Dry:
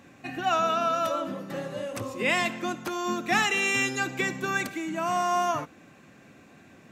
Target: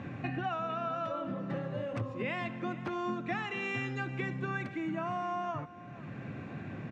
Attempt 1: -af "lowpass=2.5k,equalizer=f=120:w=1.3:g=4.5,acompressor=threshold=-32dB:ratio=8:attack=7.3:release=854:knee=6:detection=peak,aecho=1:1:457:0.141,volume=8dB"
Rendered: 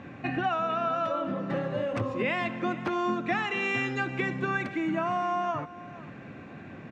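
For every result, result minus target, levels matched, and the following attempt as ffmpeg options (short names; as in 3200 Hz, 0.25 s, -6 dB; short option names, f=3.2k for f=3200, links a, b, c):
compressor: peak gain reduction -7 dB; 125 Hz band -5.5 dB
-af "lowpass=2.5k,equalizer=f=120:w=1.3:g=4.5,acompressor=threshold=-39.5dB:ratio=8:attack=7.3:release=854:knee=6:detection=peak,aecho=1:1:457:0.141,volume=8dB"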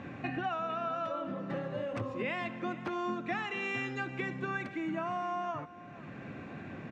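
125 Hz band -4.5 dB
-af "lowpass=2.5k,equalizer=f=120:w=1.3:g=12,acompressor=threshold=-39.5dB:ratio=8:attack=7.3:release=854:knee=6:detection=peak,aecho=1:1:457:0.141,volume=8dB"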